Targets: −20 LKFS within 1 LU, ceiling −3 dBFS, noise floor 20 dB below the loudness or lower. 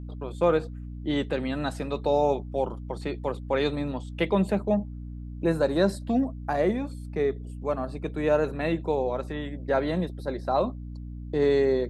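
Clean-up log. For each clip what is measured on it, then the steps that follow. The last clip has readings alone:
mains hum 60 Hz; hum harmonics up to 300 Hz; level of the hum −35 dBFS; integrated loudness −27.5 LKFS; sample peak −10.5 dBFS; target loudness −20.0 LKFS
→ hum removal 60 Hz, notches 5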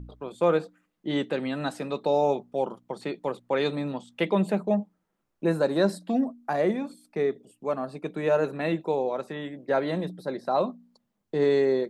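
mains hum none found; integrated loudness −28.0 LKFS; sample peak −10.0 dBFS; target loudness −20.0 LKFS
→ level +8 dB
brickwall limiter −3 dBFS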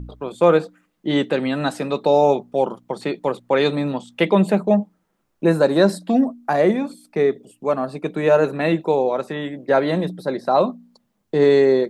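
integrated loudness −20.0 LKFS; sample peak −3.0 dBFS; background noise floor −70 dBFS

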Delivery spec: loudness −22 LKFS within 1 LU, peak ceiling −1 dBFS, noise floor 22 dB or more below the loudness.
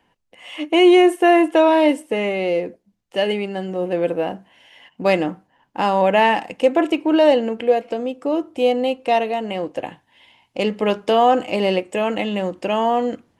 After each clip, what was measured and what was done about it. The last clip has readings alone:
integrated loudness −18.5 LKFS; sample peak −3.5 dBFS; target loudness −22.0 LKFS
→ level −3.5 dB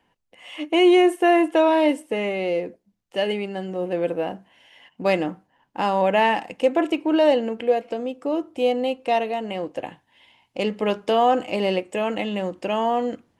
integrated loudness −22.0 LKFS; sample peak −7.0 dBFS; background noise floor −70 dBFS

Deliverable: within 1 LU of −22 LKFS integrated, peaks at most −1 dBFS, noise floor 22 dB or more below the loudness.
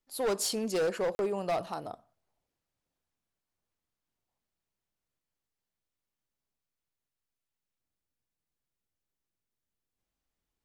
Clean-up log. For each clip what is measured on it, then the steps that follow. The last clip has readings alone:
share of clipped samples 1.0%; peaks flattened at −25.5 dBFS; number of dropouts 1; longest dropout 41 ms; integrated loudness −31.5 LKFS; sample peak −25.5 dBFS; target loudness −22.0 LKFS
→ clipped peaks rebuilt −25.5 dBFS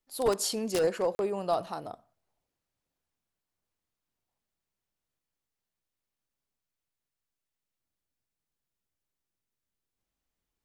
share of clipped samples 0.0%; number of dropouts 1; longest dropout 41 ms
→ repair the gap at 0:01.15, 41 ms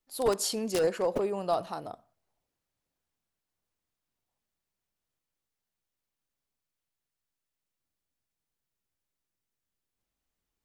number of dropouts 0; integrated loudness −30.0 LKFS; sample peak −16.5 dBFS; target loudness −22.0 LKFS
→ level +8 dB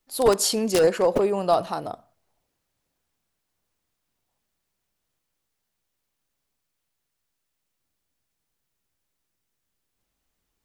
integrated loudness −22.0 LKFS; sample peak −8.5 dBFS; background noise floor −80 dBFS

